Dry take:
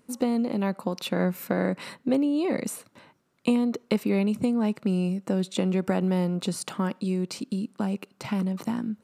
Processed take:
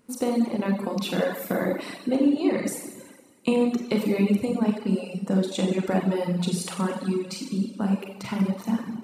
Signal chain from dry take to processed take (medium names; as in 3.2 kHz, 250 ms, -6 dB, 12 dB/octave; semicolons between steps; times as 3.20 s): Schroeder reverb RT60 1.7 s, combs from 31 ms, DRR -2.5 dB; reverb removal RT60 1.3 s